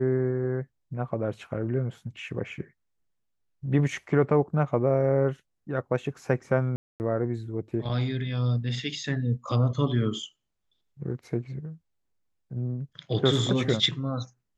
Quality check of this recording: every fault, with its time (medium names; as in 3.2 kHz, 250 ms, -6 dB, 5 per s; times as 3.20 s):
6.76–7.00 s: dropout 239 ms